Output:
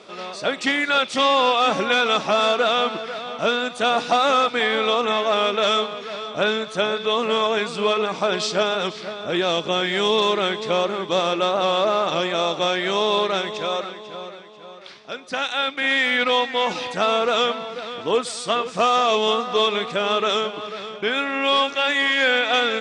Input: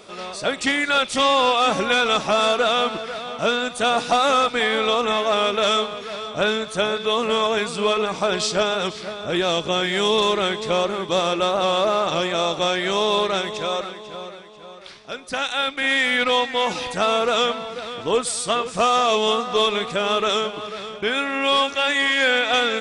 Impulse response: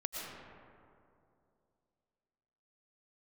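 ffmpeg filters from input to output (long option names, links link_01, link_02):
-af "highpass=150,lowpass=5900"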